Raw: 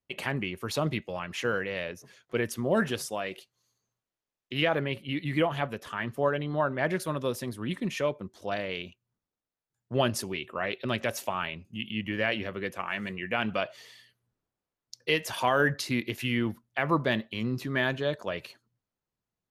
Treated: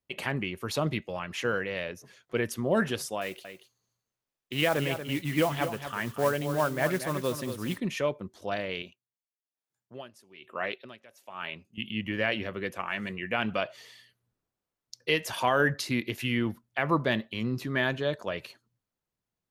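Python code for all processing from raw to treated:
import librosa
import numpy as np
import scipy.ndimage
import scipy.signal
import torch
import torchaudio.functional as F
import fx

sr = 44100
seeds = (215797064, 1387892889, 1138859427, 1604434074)

y = fx.chain(x, sr, fx.mod_noise(seeds[0], snr_db=17),
    fx.echo_single(ms=234, db=-9.5), at=(3.21, 7.78))
y = fx.chain(y, sr, fx.highpass(hz=260.0, slope=6),
    fx.tremolo_db(hz=1.1, depth_db=24), at=(8.82, 11.78))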